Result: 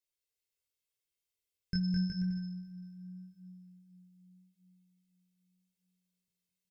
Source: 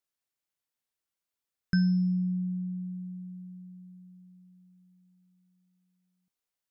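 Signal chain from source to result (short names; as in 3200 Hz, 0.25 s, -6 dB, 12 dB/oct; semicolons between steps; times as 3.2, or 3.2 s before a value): band shelf 1000 Hz -13 dB; comb 1.9 ms; bouncing-ball echo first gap 0.21 s, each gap 0.75×, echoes 5; chorus 0.83 Hz, delay 16 ms, depth 6.9 ms; two-slope reverb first 0.31 s, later 3 s, from -18 dB, DRR 8.5 dB; gain -1 dB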